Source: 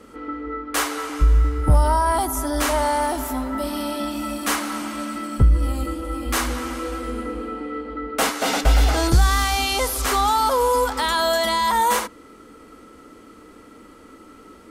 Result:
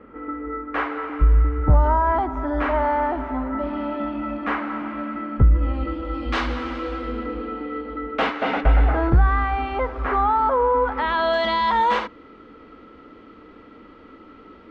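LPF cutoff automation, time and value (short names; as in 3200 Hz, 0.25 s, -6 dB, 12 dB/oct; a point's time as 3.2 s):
LPF 24 dB/oct
5.46 s 2200 Hz
6.18 s 3900 Hz
7.92 s 3900 Hz
8.94 s 1900 Hz
10.79 s 1900 Hz
11.4 s 3600 Hz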